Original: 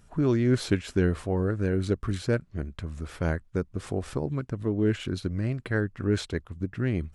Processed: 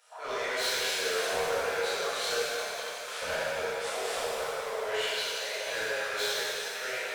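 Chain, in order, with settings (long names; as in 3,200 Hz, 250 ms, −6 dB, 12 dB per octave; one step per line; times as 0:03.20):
Butterworth high-pass 480 Hz 72 dB per octave
parametric band 3,600 Hz +4.5 dB 1.3 octaves
in parallel at −11 dB: soft clipping −37 dBFS, distortion −6 dB
on the sum: flanger 0.48 Hz, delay 6.4 ms, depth 6.7 ms, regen −83%
hard clipping −37 dBFS, distortion −9 dB
reverb with rising layers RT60 2.5 s, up +7 semitones, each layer −8 dB, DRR −11 dB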